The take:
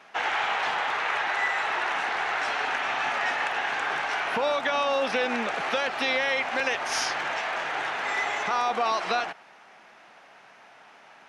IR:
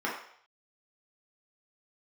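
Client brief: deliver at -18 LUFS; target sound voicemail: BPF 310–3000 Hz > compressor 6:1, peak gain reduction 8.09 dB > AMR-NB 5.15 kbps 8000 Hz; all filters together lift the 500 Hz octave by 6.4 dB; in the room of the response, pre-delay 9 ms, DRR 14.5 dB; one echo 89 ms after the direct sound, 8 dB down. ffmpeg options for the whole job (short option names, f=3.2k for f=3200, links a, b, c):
-filter_complex "[0:a]equalizer=f=500:t=o:g=8,aecho=1:1:89:0.398,asplit=2[a][b];[1:a]atrim=start_sample=2205,adelay=9[c];[b][c]afir=irnorm=-1:irlink=0,volume=-23.5dB[d];[a][d]amix=inputs=2:normalize=0,highpass=310,lowpass=3k,acompressor=threshold=-23dB:ratio=6,volume=12.5dB" -ar 8000 -c:a libopencore_amrnb -b:a 5150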